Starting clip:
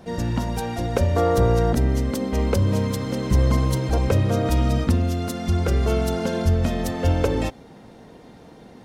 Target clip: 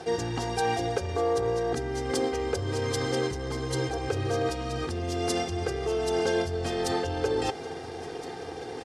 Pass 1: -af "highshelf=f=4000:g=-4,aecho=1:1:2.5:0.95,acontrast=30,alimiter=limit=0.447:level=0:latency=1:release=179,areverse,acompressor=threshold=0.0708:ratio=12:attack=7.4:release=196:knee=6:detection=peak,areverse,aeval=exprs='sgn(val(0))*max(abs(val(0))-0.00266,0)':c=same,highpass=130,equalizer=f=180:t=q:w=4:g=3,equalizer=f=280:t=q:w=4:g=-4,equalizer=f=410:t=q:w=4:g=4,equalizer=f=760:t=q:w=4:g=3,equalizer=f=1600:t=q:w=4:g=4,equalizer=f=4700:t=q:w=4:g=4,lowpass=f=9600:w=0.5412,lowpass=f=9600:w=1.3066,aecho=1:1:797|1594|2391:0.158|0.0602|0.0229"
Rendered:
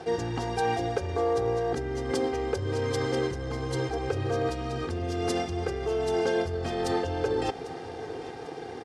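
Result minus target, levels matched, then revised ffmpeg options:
echo 571 ms early; 8 kHz band -5.5 dB
-af "highshelf=f=4000:g=4,aecho=1:1:2.5:0.95,acontrast=30,alimiter=limit=0.447:level=0:latency=1:release=179,areverse,acompressor=threshold=0.0708:ratio=12:attack=7.4:release=196:knee=6:detection=peak,areverse,aeval=exprs='sgn(val(0))*max(abs(val(0))-0.00266,0)':c=same,highpass=130,equalizer=f=180:t=q:w=4:g=3,equalizer=f=280:t=q:w=4:g=-4,equalizer=f=410:t=q:w=4:g=4,equalizer=f=760:t=q:w=4:g=3,equalizer=f=1600:t=q:w=4:g=4,equalizer=f=4700:t=q:w=4:g=4,lowpass=f=9600:w=0.5412,lowpass=f=9600:w=1.3066,aecho=1:1:1368|2736|4104:0.158|0.0602|0.0229"

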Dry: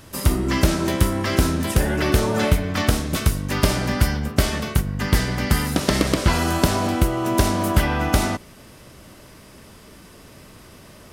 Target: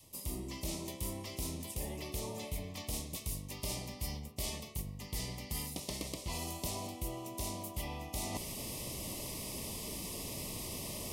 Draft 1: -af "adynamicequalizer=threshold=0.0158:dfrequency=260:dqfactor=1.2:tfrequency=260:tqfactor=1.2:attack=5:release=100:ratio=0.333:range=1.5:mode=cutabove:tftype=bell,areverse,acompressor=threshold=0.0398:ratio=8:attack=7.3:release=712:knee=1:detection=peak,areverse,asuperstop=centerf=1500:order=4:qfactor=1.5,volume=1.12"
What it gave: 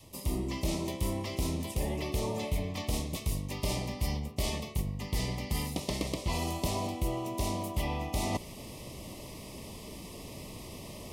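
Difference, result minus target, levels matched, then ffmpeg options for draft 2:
compression: peak gain reduction -8.5 dB; 8 kHz band -6.0 dB
-af "adynamicequalizer=threshold=0.0158:dfrequency=260:dqfactor=1.2:tfrequency=260:tqfactor=1.2:attack=5:release=100:ratio=0.333:range=1.5:mode=cutabove:tftype=bell,areverse,acompressor=threshold=0.0126:ratio=8:attack=7.3:release=712:knee=1:detection=peak,areverse,asuperstop=centerf=1500:order=4:qfactor=1.5,highshelf=f=5000:g=11,volume=1.12"

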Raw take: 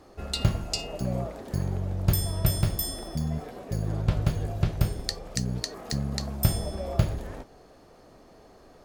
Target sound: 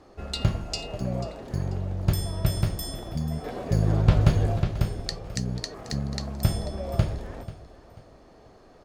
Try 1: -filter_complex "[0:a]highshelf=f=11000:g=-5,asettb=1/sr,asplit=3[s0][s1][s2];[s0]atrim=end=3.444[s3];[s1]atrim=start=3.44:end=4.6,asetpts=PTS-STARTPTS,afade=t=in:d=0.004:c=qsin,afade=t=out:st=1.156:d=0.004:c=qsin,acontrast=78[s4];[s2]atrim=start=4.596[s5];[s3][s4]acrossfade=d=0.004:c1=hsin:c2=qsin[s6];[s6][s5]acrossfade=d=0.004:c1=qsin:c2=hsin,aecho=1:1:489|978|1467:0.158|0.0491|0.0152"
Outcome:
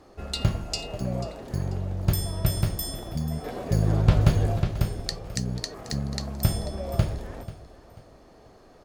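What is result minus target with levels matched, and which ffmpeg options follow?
8 kHz band +2.5 dB
-filter_complex "[0:a]highshelf=f=11000:g=-15,asettb=1/sr,asplit=3[s0][s1][s2];[s0]atrim=end=3.444[s3];[s1]atrim=start=3.44:end=4.6,asetpts=PTS-STARTPTS,afade=t=in:d=0.004:c=qsin,afade=t=out:st=1.156:d=0.004:c=qsin,acontrast=78[s4];[s2]atrim=start=4.596[s5];[s3][s4]acrossfade=d=0.004:c1=hsin:c2=qsin[s6];[s6][s5]acrossfade=d=0.004:c1=qsin:c2=hsin,aecho=1:1:489|978|1467:0.158|0.0491|0.0152"

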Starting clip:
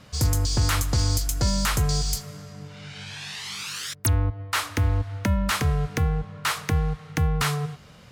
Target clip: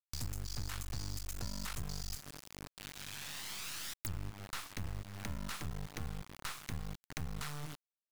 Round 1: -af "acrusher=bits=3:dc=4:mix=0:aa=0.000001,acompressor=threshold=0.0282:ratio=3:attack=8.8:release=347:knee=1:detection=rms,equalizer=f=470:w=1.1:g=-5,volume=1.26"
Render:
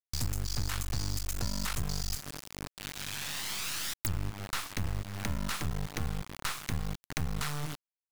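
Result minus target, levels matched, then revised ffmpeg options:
compression: peak gain reduction -7.5 dB
-af "acrusher=bits=3:dc=4:mix=0:aa=0.000001,acompressor=threshold=0.0075:ratio=3:attack=8.8:release=347:knee=1:detection=rms,equalizer=f=470:w=1.1:g=-5,volume=1.26"

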